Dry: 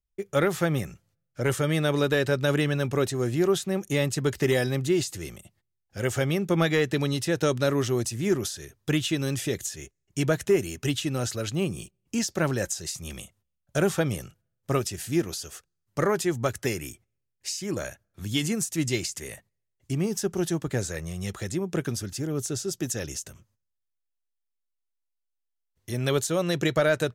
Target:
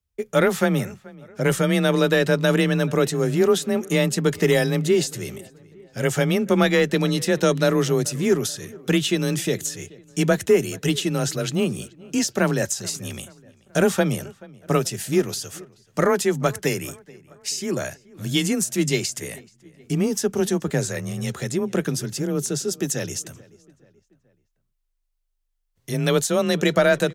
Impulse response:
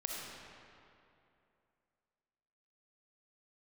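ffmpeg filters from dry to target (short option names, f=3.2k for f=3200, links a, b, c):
-filter_complex "[0:a]asplit=2[a][b];[b]adelay=431,lowpass=f=2.8k:p=1,volume=-22.5dB,asplit=2[c][d];[d]adelay=431,lowpass=f=2.8k:p=1,volume=0.5,asplit=2[e][f];[f]adelay=431,lowpass=f=2.8k:p=1,volume=0.5[g];[a][c][e][g]amix=inputs=4:normalize=0,afreqshift=25,volume=5dB"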